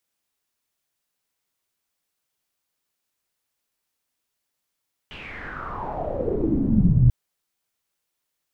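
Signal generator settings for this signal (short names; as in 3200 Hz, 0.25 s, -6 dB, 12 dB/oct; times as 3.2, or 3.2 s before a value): swept filtered noise pink, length 1.99 s lowpass, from 3000 Hz, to 120 Hz, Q 6.8, exponential, gain ramp +26 dB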